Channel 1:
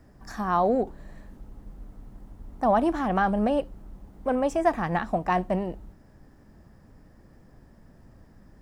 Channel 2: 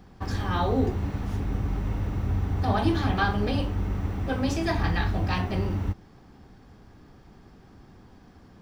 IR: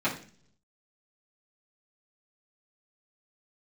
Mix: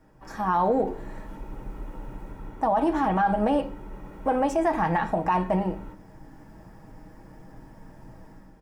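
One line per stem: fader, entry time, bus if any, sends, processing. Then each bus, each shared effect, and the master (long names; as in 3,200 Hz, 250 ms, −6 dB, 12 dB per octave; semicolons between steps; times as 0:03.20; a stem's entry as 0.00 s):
−6.0 dB, 0.00 s, send −20.5 dB, parametric band 890 Hz +10.5 dB 0.23 octaves; comb filter 6.3 ms, depth 54%; automatic gain control gain up to 10.5 dB
−15.5 dB, 6.1 ms, send −4.5 dB, high-pass filter 210 Hz 12 dB per octave; high-shelf EQ 2,700 Hz −8.5 dB; comb filter 2.1 ms, depth 73%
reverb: on, RT60 0.45 s, pre-delay 3 ms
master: parametric band 4,200 Hz −4 dB 0.49 octaves; brickwall limiter −14.5 dBFS, peak gain reduction 9.5 dB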